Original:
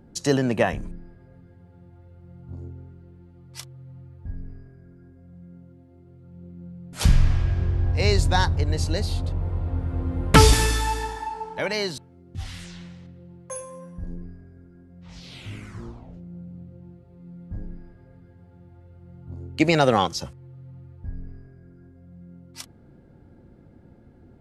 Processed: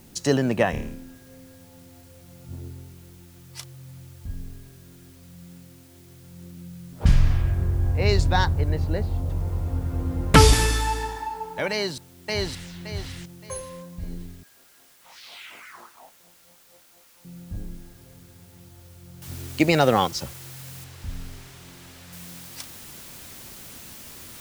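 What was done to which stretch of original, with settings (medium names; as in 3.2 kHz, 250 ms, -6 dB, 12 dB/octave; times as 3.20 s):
0.71–2.45 s: flutter echo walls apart 4.6 m, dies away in 0.55 s
6.57–9.30 s: level-controlled noise filter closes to 380 Hz, open at -11.5 dBFS
11.71–12.68 s: echo throw 570 ms, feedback 30%, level -0.5 dB
14.43–17.25 s: LFO high-pass sine 4.2 Hz 710–1800 Hz
19.22 s: noise floor step -56 dB -43 dB
20.84–22.13 s: treble shelf 7.4 kHz -11.5 dB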